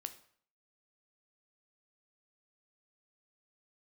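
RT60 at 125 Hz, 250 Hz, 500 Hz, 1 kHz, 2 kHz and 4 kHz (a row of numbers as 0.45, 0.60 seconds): 0.55, 0.55, 0.55, 0.55, 0.55, 0.50 seconds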